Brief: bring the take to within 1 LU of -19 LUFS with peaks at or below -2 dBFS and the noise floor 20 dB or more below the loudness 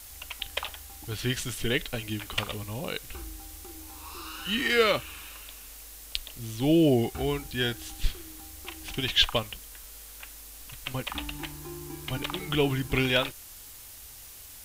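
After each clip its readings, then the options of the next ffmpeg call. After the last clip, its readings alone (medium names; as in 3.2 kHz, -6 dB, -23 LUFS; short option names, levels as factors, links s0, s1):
noise floor -47 dBFS; noise floor target -49 dBFS; loudness -29.0 LUFS; peak level -8.0 dBFS; loudness target -19.0 LUFS
-> -af "afftdn=nr=6:nf=-47"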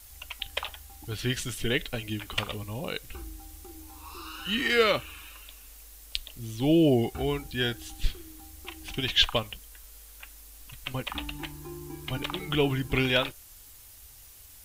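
noise floor -51 dBFS; loudness -29.0 LUFS; peak level -8.0 dBFS; loudness target -19.0 LUFS
-> -af "volume=3.16,alimiter=limit=0.794:level=0:latency=1"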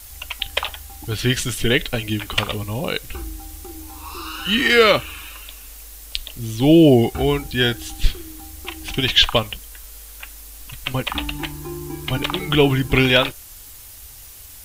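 loudness -19.0 LUFS; peak level -2.0 dBFS; noise floor -41 dBFS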